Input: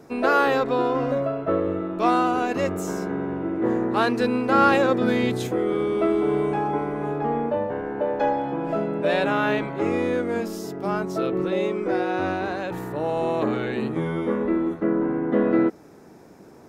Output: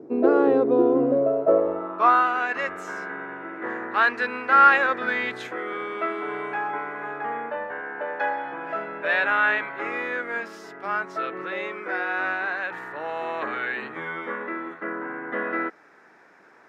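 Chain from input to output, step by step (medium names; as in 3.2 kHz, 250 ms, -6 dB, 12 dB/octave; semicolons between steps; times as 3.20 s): band-pass sweep 350 Hz -> 1.7 kHz, 1.09–2.28 s; trim +9 dB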